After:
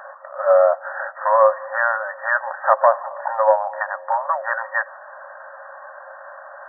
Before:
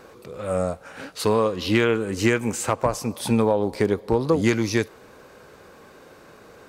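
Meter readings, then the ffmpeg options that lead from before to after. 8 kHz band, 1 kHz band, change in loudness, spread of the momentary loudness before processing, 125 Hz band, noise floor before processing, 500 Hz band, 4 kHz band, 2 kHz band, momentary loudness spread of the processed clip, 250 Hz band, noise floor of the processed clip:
below −40 dB, +10.5 dB, +3.5 dB, 10 LU, below −40 dB, −49 dBFS, +4.0 dB, below −40 dB, +7.0 dB, 23 LU, below −40 dB, −40 dBFS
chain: -af "apsyclip=15.5dB,afftfilt=real='re*between(b*sr/4096,530,1900)':imag='im*between(b*sr/4096,530,1900)':win_size=4096:overlap=0.75,volume=-2.5dB"

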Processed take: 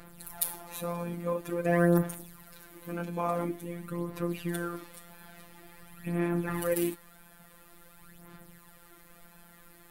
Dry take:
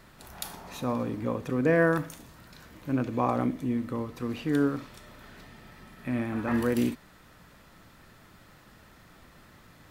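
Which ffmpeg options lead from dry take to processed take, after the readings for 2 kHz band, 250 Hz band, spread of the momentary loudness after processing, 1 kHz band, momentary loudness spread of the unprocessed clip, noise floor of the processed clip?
−4.5 dB, −4.5 dB, 23 LU, −3.0 dB, 16 LU, −56 dBFS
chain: -af "aphaser=in_gain=1:out_gain=1:delay=4.6:decay=0.6:speed=0.48:type=sinusoidal,highshelf=frequency=7900:width_type=q:width=1.5:gain=9.5,afftfilt=real='hypot(re,im)*cos(PI*b)':imag='0':win_size=1024:overlap=0.75"

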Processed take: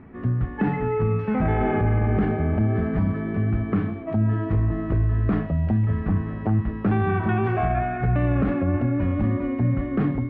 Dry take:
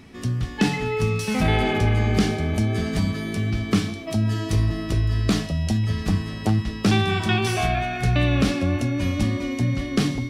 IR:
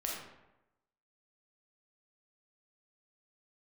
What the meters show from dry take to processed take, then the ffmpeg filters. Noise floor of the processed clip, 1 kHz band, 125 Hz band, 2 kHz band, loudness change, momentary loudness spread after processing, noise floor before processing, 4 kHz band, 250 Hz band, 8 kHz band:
−33 dBFS, +0.5 dB, 0.0 dB, −5.5 dB, −0.5 dB, 3 LU, −33 dBFS, below −20 dB, 0.0 dB, below −40 dB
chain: -af "lowpass=frequency=1700:width=0.5412,lowpass=frequency=1700:width=1.3066,alimiter=limit=-15.5dB:level=0:latency=1:release=12,volume=1.5dB"

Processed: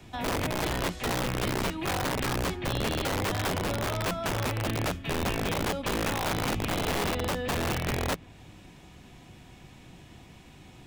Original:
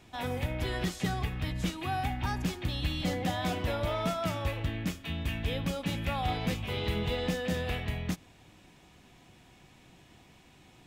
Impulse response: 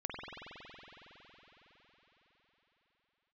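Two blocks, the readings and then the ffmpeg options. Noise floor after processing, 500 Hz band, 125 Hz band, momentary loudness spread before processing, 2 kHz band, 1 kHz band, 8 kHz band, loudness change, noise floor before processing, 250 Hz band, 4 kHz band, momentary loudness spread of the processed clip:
−51 dBFS, +4.0 dB, +0.5 dB, 3 LU, +5.5 dB, +4.0 dB, +9.5 dB, +3.5 dB, −59 dBFS, +2.0 dB, +4.0 dB, 2 LU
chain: -filter_complex "[0:a]lowshelf=frequency=250:gain=5.5,acrossover=split=95|310|3500[link_01][link_02][link_03][link_04];[link_01]acompressor=threshold=-38dB:ratio=4[link_05];[link_02]acompressor=threshold=-29dB:ratio=4[link_06];[link_03]acompressor=threshold=-38dB:ratio=4[link_07];[link_04]acompressor=threshold=-57dB:ratio=4[link_08];[link_05][link_06][link_07][link_08]amix=inputs=4:normalize=0,acrossover=split=1700[link_09][link_10];[link_09]aeval=exprs='(mod(25.1*val(0)+1,2)-1)/25.1':channel_layout=same[link_11];[link_11][link_10]amix=inputs=2:normalize=0,volume=4.5dB"

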